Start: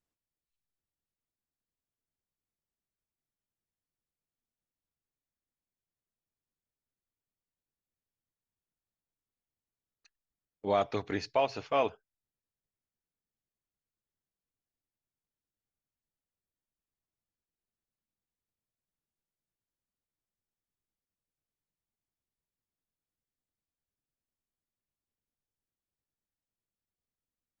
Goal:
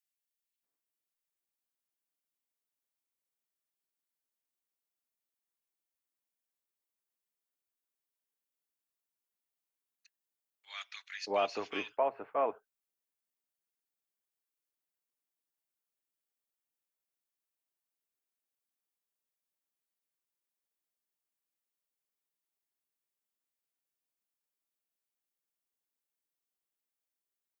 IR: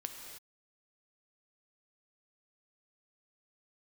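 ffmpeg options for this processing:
-filter_complex "[0:a]acrossover=split=230 2500:gain=0.1 1 0.224[a][b][c];[a][b][c]amix=inputs=3:normalize=0,acrossover=split=1700[d][e];[d]adelay=630[f];[f][e]amix=inputs=2:normalize=0,crystalizer=i=8:c=0,volume=-4.5dB"

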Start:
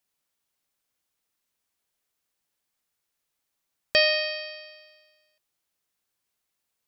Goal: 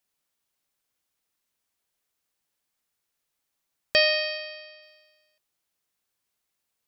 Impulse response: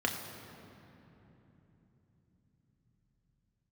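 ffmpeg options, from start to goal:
-filter_complex "[0:a]asplit=3[a][b][c];[a]afade=t=out:st=4.37:d=0.02[d];[b]highpass=240,lowpass=6k,afade=t=in:st=4.37:d=0.02,afade=t=out:st=4.81:d=0.02[e];[c]afade=t=in:st=4.81:d=0.02[f];[d][e][f]amix=inputs=3:normalize=0"

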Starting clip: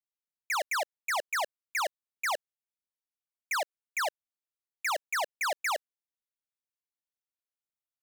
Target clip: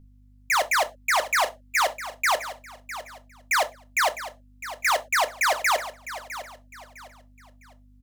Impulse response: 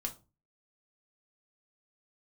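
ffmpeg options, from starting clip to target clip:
-filter_complex "[0:a]aeval=exprs='val(0)+0.00126*(sin(2*PI*50*n/s)+sin(2*PI*2*50*n/s)/2+sin(2*PI*3*50*n/s)/3+sin(2*PI*4*50*n/s)/4+sin(2*PI*5*50*n/s)/5)':c=same,aecho=1:1:656|1312|1968:0.211|0.0676|0.0216,asplit=2[a][b];[1:a]atrim=start_sample=2205,afade=t=out:st=0.17:d=0.01,atrim=end_sample=7938[c];[b][c]afir=irnorm=-1:irlink=0,volume=0dB[d];[a][d]amix=inputs=2:normalize=0,volume=3dB"

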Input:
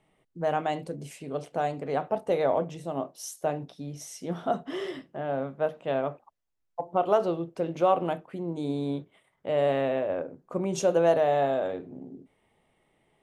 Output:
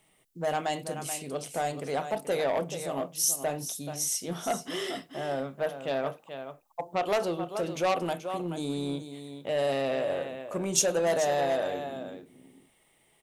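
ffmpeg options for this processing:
-filter_complex "[0:a]asplit=2[a][b];[b]aecho=0:1:431:0.282[c];[a][c]amix=inputs=2:normalize=0,asoftclip=type=tanh:threshold=-19.5dB,crystalizer=i=5.5:c=0,volume=-2dB"

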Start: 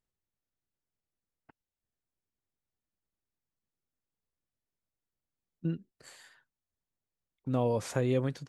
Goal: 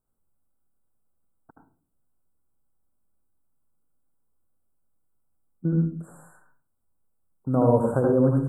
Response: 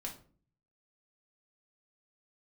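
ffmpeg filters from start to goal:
-filter_complex "[0:a]acrossover=split=2700[a][b];[b]acompressor=threshold=-56dB:ratio=4:attack=1:release=60[c];[a][c]amix=inputs=2:normalize=0,asuperstop=centerf=3500:order=20:qfactor=0.57,asplit=2[d][e];[1:a]atrim=start_sample=2205,adelay=75[f];[e][f]afir=irnorm=-1:irlink=0,volume=1.5dB[g];[d][g]amix=inputs=2:normalize=0,volume=6.5dB"

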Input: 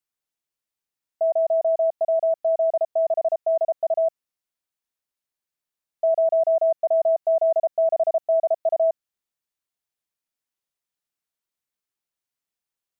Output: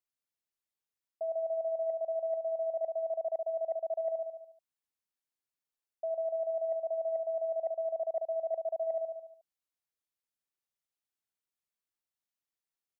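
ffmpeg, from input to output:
-af "aecho=1:1:72|144|216|288|360|432|504:0.398|0.235|0.139|0.0818|0.0482|0.0285|0.0168,areverse,acompressor=threshold=-23dB:ratio=12,areverse,volume=-7.5dB"

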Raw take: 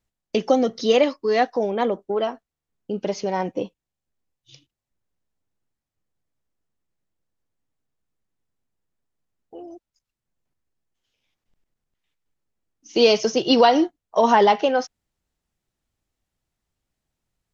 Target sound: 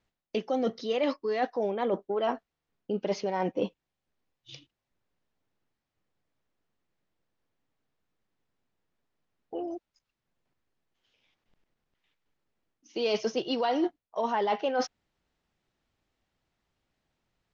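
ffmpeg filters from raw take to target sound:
-af "lowshelf=f=140:g=-8,areverse,acompressor=threshold=-30dB:ratio=12,areverse,lowpass=4.3k,volume=5dB"

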